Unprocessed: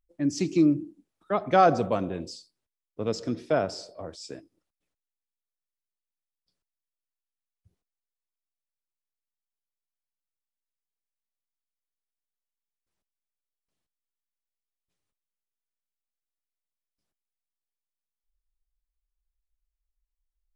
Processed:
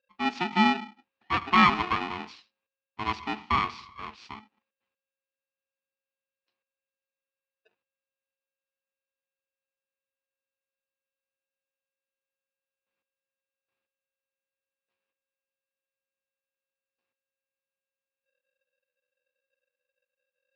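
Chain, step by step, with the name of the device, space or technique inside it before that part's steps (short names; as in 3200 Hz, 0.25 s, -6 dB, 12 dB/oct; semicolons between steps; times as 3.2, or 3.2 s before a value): ring modulator pedal into a guitar cabinet (polarity switched at an audio rate 540 Hz; speaker cabinet 91–4200 Hz, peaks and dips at 150 Hz -10 dB, 210 Hz +5 dB, 600 Hz -9 dB, 1100 Hz +7 dB, 2500 Hz +9 dB); gain -3 dB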